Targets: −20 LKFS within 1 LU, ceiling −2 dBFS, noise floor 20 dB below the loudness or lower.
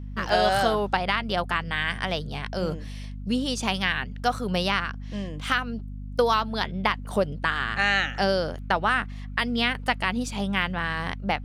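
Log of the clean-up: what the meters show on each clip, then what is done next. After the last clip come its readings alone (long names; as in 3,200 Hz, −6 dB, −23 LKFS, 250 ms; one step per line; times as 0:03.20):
number of dropouts 1; longest dropout 2.3 ms; mains hum 50 Hz; hum harmonics up to 250 Hz; level of the hum −33 dBFS; integrated loudness −26.0 LKFS; sample peak −9.0 dBFS; target loudness −20.0 LKFS
→ repair the gap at 0:00.29, 2.3 ms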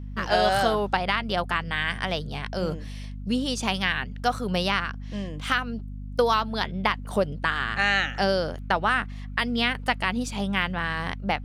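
number of dropouts 0; mains hum 50 Hz; hum harmonics up to 250 Hz; level of the hum −33 dBFS
→ hum removal 50 Hz, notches 5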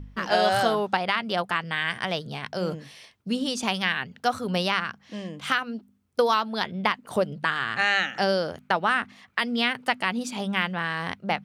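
mains hum none found; integrated loudness −26.0 LKFS; sample peak −9.0 dBFS; target loudness −20.0 LKFS
→ level +6 dB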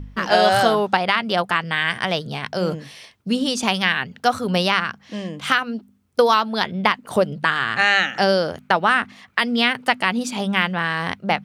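integrated loudness −20.0 LKFS; sample peak −3.0 dBFS; background noise floor −54 dBFS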